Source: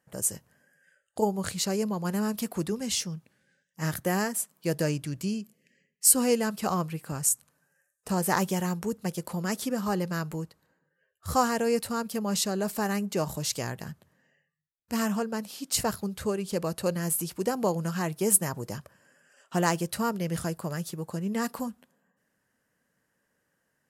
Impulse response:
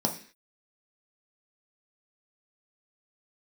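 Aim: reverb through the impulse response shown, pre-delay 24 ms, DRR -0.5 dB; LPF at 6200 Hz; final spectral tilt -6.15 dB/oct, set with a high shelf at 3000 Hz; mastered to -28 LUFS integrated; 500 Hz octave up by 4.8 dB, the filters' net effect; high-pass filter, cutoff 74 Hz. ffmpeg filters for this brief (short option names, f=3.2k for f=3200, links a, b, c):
-filter_complex "[0:a]highpass=74,lowpass=6.2k,equalizer=f=500:t=o:g=5.5,highshelf=f=3k:g=3.5,asplit=2[a][b];[1:a]atrim=start_sample=2205,adelay=24[c];[b][c]afir=irnorm=-1:irlink=0,volume=-7.5dB[d];[a][d]amix=inputs=2:normalize=0,volume=-8dB"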